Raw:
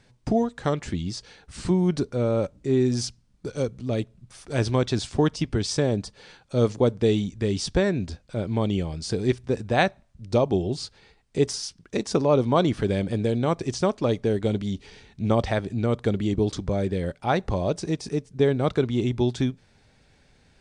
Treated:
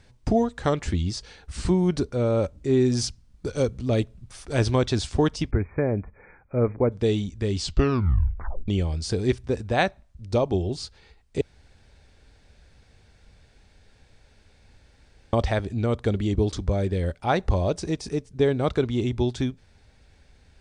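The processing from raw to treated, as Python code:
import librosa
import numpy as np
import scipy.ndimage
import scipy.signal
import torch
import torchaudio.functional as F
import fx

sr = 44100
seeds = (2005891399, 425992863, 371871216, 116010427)

y = fx.brickwall_lowpass(x, sr, high_hz=2500.0, at=(5.51, 6.92))
y = fx.edit(y, sr, fx.tape_stop(start_s=7.55, length_s=1.13),
    fx.room_tone_fill(start_s=11.41, length_s=3.92), tone=tone)
y = fx.low_shelf_res(y, sr, hz=100.0, db=7.0, q=1.5)
y = fx.rider(y, sr, range_db=10, speed_s=2.0)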